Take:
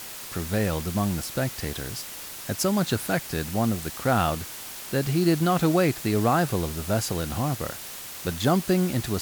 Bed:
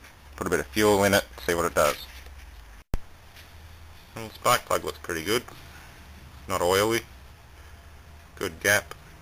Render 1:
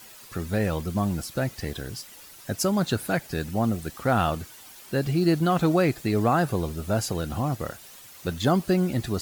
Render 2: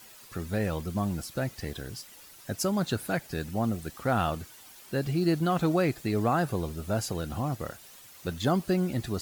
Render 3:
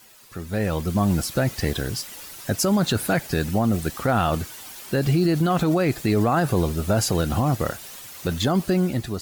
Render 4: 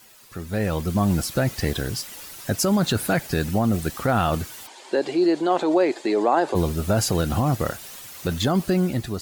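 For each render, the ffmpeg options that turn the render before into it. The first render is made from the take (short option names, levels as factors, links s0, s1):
-af "afftdn=nr=11:nf=-39"
-af "volume=0.631"
-af "dynaudnorm=f=230:g=7:m=3.98,alimiter=limit=0.251:level=0:latency=1:release=26"
-filter_complex "[0:a]asplit=3[s0][s1][s2];[s0]afade=t=out:st=4.66:d=0.02[s3];[s1]highpass=f=300:w=0.5412,highpass=f=300:w=1.3066,equalizer=f=360:t=q:w=4:g=5,equalizer=f=570:t=q:w=4:g=4,equalizer=f=900:t=q:w=4:g=8,equalizer=f=1300:t=q:w=4:g=-6,equalizer=f=2600:t=q:w=4:g=-3,equalizer=f=5700:t=q:w=4:g=-7,lowpass=f=7300:w=0.5412,lowpass=f=7300:w=1.3066,afade=t=in:st=4.66:d=0.02,afade=t=out:st=6.54:d=0.02[s4];[s2]afade=t=in:st=6.54:d=0.02[s5];[s3][s4][s5]amix=inputs=3:normalize=0"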